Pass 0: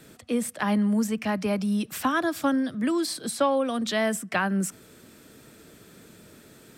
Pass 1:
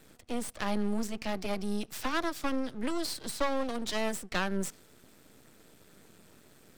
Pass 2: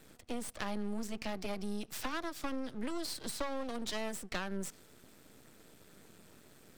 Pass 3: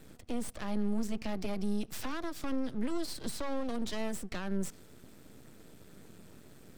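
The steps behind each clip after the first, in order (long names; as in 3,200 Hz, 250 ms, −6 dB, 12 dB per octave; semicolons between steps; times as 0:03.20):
half-wave rectification; dynamic equaliser 4,900 Hz, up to +5 dB, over −52 dBFS, Q 0.97; level −3.5 dB
downward compressor 3 to 1, threshold −33 dBFS, peak gain reduction 8 dB; level −1 dB
brickwall limiter −28.5 dBFS, peak gain reduction 7.5 dB; low-shelf EQ 400 Hz +8 dB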